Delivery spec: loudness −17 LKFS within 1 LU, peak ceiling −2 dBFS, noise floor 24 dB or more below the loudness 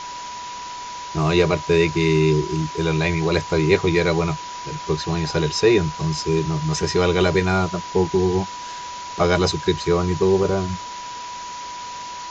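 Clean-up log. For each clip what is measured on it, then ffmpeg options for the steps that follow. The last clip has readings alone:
interfering tone 980 Hz; level of the tone −31 dBFS; background noise floor −33 dBFS; target noise floor −45 dBFS; integrated loudness −20.5 LKFS; sample peak −3.5 dBFS; target loudness −17.0 LKFS
→ -af "bandreject=frequency=980:width=30"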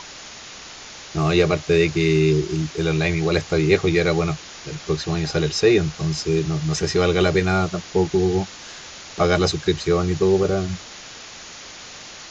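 interfering tone none found; background noise floor −39 dBFS; target noise floor −45 dBFS
→ -af "afftdn=noise_reduction=6:noise_floor=-39"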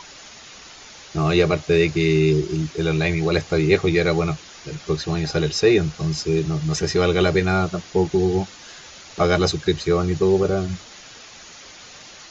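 background noise floor −43 dBFS; target noise floor −45 dBFS
→ -af "afftdn=noise_reduction=6:noise_floor=-43"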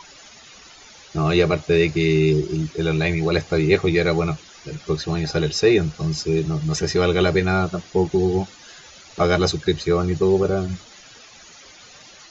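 background noise floor −46 dBFS; integrated loudness −20.5 LKFS; sample peak −3.0 dBFS; target loudness −17.0 LKFS
→ -af "volume=3.5dB,alimiter=limit=-2dB:level=0:latency=1"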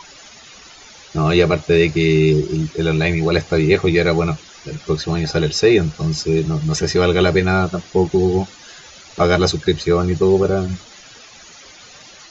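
integrated loudness −17.0 LKFS; sample peak −2.0 dBFS; background noise floor −42 dBFS

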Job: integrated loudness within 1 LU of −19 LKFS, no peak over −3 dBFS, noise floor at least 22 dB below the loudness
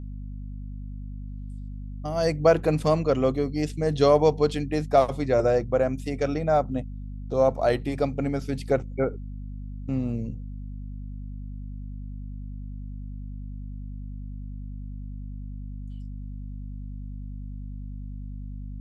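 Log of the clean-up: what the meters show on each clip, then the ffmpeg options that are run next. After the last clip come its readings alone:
mains hum 50 Hz; hum harmonics up to 250 Hz; level of the hum −33 dBFS; integrated loudness −24.5 LKFS; sample peak −6.5 dBFS; target loudness −19.0 LKFS
→ -af "bandreject=frequency=50:width_type=h:width=4,bandreject=frequency=100:width_type=h:width=4,bandreject=frequency=150:width_type=h:width=4,bandreject=frequency=200:width_type=h:width=4,bandreject=frequency=250:width_type=h:width=4"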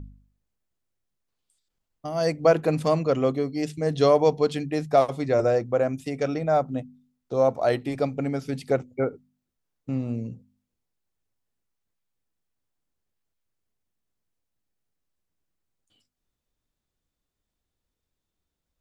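mains hum none found; integrated loudness −24.5 LKFS; sample peak −7.0 dBFS; target loudness −19.0 LKFS
→ -af "volume=5.5dB,alimiter=limit=-3dB:level=0:latency=1"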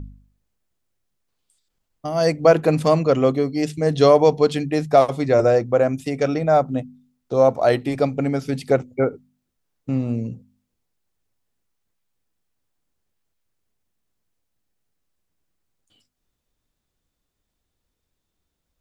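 integrated loudness −19.5 LKFS; sample peak −3.0 dBFS; background noise floor −78 dBFS

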